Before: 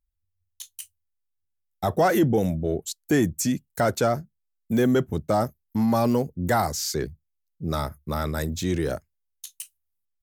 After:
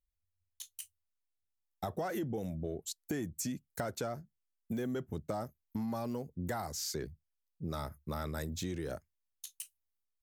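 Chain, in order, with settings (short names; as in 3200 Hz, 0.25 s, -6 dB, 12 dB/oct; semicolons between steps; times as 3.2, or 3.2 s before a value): compressor, threshold -27 dBFS, peak gain reduction 11 dB; gain -7 dB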